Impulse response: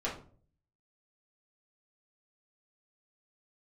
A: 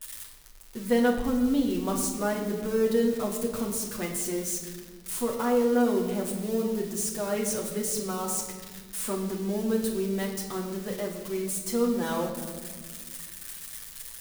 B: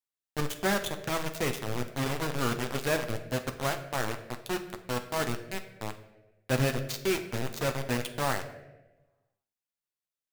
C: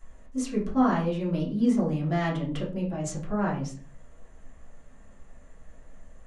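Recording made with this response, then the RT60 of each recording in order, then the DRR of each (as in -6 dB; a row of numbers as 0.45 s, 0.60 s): C; 1.7 s, 1.1 s, 0.45 s; -1.0 dB, 5.5 dB, -7.5 dB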